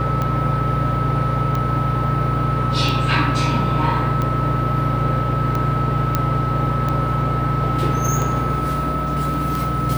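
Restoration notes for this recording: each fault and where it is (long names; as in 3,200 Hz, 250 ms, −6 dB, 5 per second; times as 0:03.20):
mains hum 60 Hz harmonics 5 −26 dBFS
scratch tick 45 rpm −11 dBFS
whistle 1,300 Hz −23 dBFS
0:06.15: click −4 dBFS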